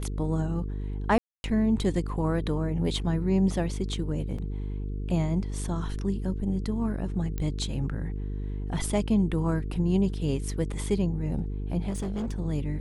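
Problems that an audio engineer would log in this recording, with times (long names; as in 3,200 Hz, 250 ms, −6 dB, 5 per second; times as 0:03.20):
mains buzz 50 Hz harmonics 9 −32 dBFS
0:01.18–0:01.44: drop-out 261 ms
0:04.38–0:04.39: drop-out 5.3 ms
0:07.38: click −19 dBFS
0:11.89–0:12.40: clipping −27.5 dBFS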